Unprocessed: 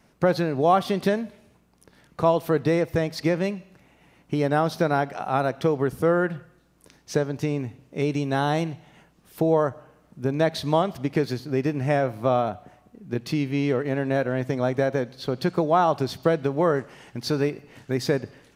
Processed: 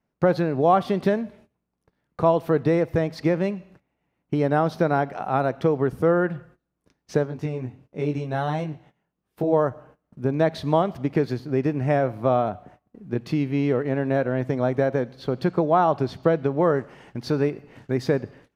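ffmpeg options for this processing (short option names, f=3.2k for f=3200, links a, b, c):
-filter_complex "[0:a]asplit=3[a][b][c];[a]afade=t=out:st=7.25:d=0.02[d];[b]flanger=delay=19.5:depth=4.2:speed=1.5,afade=t=in:st=7.25:d=0.02,afade=t=out:st=9.52:d=0.02[e];[c]afade=t=in:st=9.52:d=0.02[f];[d][e][f]amix=inputs=3:normalize=0,asettb=1/sr,asplit=3[g][h][i];[g]atrim=end=15.454[j];[h]atrim=start=15.45:end=16.62,asetpts=PTS-STARTPTS,afade=t=in:d=0.004:c=qsin,afade=t=out:st=1.166:d=0.004:c=qsin,highshelf=f=11k:g=-10.5[k];[i]atrim=start=16.616[l];[j][k]acrossfade=d=0.004:c1=hsin:c2=qsin[m];[m][l]acrossfade=d=0.004:c1=qsin:c2=hsin,agate=range=-19dB:threshold=-50dB:ratio=16:detection=peak,highshelf=f=3.1k:g=-11.5,volume=1.5dB"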